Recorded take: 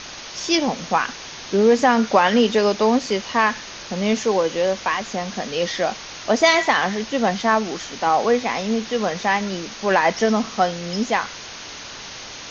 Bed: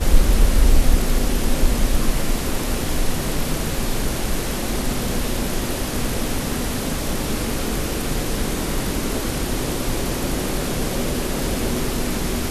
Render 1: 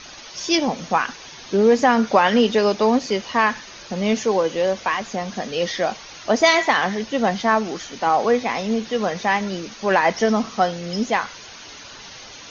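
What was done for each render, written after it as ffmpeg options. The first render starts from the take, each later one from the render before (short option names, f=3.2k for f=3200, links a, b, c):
-af "afftdn=nr=8:nf=-36"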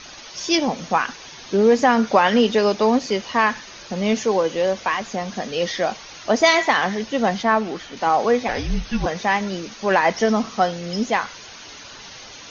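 -filter_complex "[0:a]asettb=1/sr,asplit=3[a][b][c];[a]atrim=end=7.434[d];[b]atrim=start=7.43:end=7.97,asetpts=PTS-STARTPTS,afade=t=in:d=0.004:c=qsin,afade=t=out:st=0.536:d=0.004:c=qsin,acrossover=split=4500[e][f];[f]acompressor=threshold=-54dB:ratio=4:attack=1:release=60[g];[e][g]amix=inputs=2:normalize=0[h];[c]atrim=start=7.966[i];[d][h]acrossfade=d=0.004:c1=hsin:c2=qsin[j];[j][i]acrossfade=d=0.004:c1=qsin:c2=hsin,asettb=1/sr,asplit=3[k][l][m];[k]atrim=end=8.484[n];[l]atrim=start=8.48:end=9.06,asetpts=PTS-STARTPTS,afade=t=in:d=0.004:c=qsin,afade=t=out:st=0.576:d=0.004:c=qsin,afreqshift=-260[o];[m]atrim=start=9.056[p];[n][o]acrossfade=d=0.004:c1=hsin:c2=qsin[q];[q][p]acrossfade=d=0.004:c1=qsin:c2=hsin"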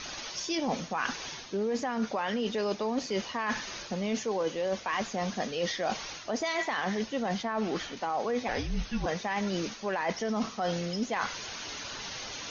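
-af "alimiter=limit=-12dB:level=0:latency=1:release=11,areverse,acompressor=threshold=-28dB:ratio=6,areverse"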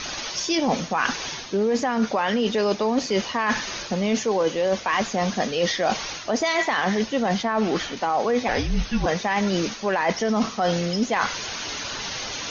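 -af "volume=8.5dB"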